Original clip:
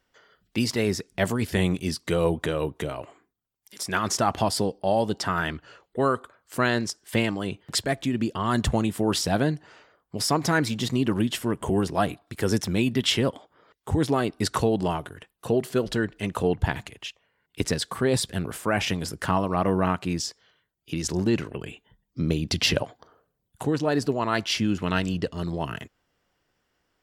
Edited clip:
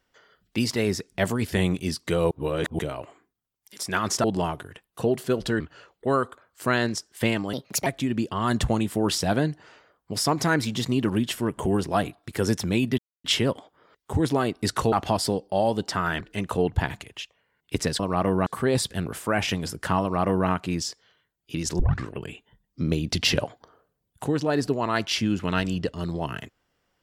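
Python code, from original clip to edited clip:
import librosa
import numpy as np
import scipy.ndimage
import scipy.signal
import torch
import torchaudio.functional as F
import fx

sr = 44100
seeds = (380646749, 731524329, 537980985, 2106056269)

y = fx.edit(x, sr, fx.reverse_span(start_s=2.31, length_s=0.48),
    fx.swap(start_s=4.24, length_s=1.28, other_s=14.7, other_length_s=1.36),
    fx.speed_span(start_s=7.45, length_s=0.45, speed=1.35),
    fx.insert_silence(at_s=13.02, length_s=0.26),
    fx.duplicate(start_s=19.4, length_s=0.47, to_s=17.85),
    fx.tape_start(start_s=21.18, length_s=0.28), tone=tone)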